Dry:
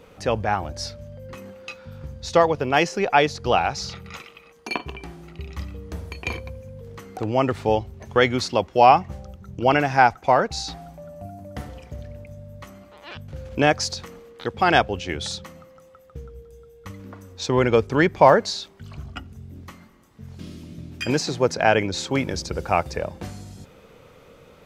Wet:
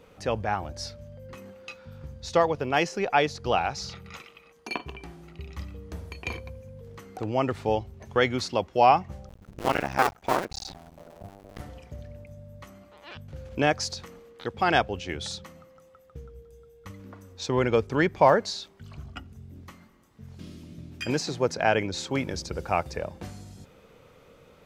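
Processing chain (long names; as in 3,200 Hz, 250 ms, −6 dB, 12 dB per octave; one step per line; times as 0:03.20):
0:09.29–0:11.60: sub-harmonics by changed cycles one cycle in 2, muted
level −5 dB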